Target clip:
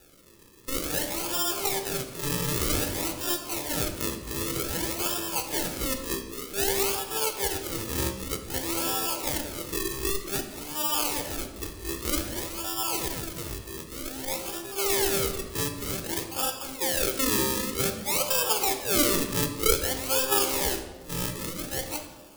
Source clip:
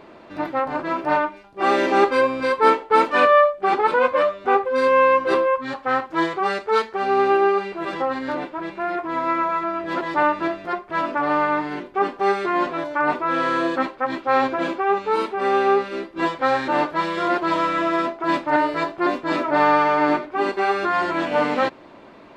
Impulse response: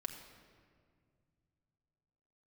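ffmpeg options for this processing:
-filter_complex "[0:a]areverse,acrusher=samples=41:mix=1:aa=0.000001:lfo=1:lforange=41:lforate=0.53,crystalizer=i=5:c=0[link_01];[1:a]atrim=start_sample=2205,asetrate=88200,aresample=44100[link_02];[link_01][link_02]afir=irnorm=-1:irlink=0,volume=-6dB"

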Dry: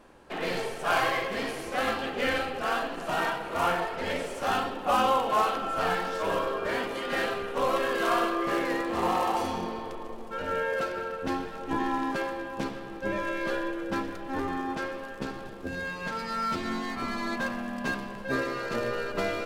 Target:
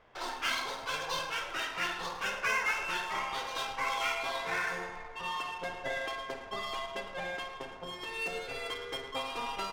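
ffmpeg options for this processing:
ffmpeg -i in.wav -af "aecho=1:1:102|215.7:0.282|0.282,adynamicsmooth=sensitivity=5:basefreq=1600,asetrate=88200,aresample=44100,volume=-6.5dB" out.wav

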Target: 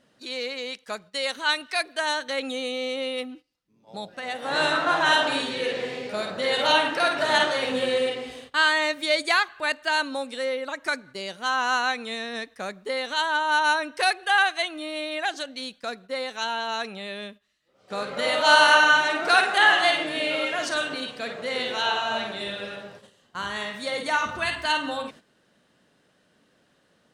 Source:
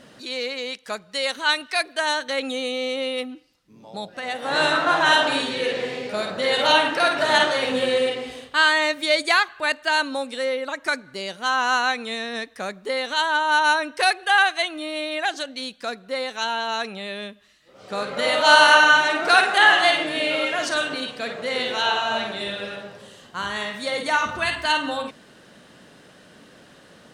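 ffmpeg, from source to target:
ffmpeg -i in.wav -af "agate=range=-12dB:threshold=-42dB:ratio=16:detection=peak,volume=-3dB" out.wav

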